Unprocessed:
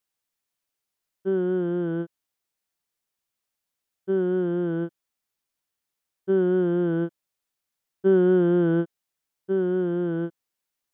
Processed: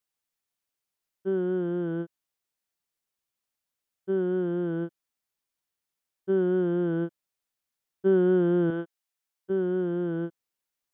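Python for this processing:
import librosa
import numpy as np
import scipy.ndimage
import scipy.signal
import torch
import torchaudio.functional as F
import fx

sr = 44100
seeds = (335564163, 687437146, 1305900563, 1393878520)

y = fx.low_shelf(x, sr, hz=360.0, db=-10.5, at=(8.7, 9.5))
y = F.gain(torch.from_numpy(y), -3.0).numpy()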